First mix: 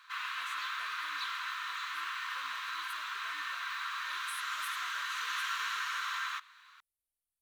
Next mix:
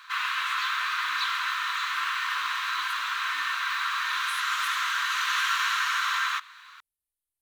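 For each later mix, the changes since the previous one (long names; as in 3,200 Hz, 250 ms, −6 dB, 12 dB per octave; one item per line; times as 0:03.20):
speech: send +9.5 dB
background +9.5 dB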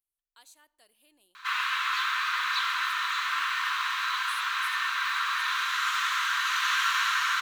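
speech: send −9.0 dB
background: entry +1.35 s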